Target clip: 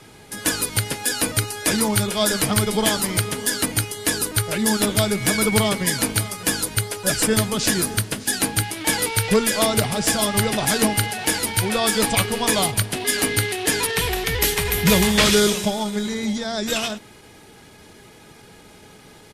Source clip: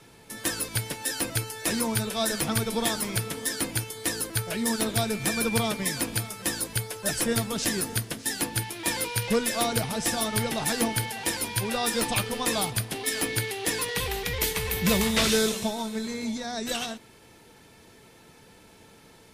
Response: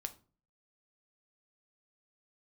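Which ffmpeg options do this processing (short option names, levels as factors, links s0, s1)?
-af "asetrate=41625,aresample=44100,atempo=1.05946,volume=2.24"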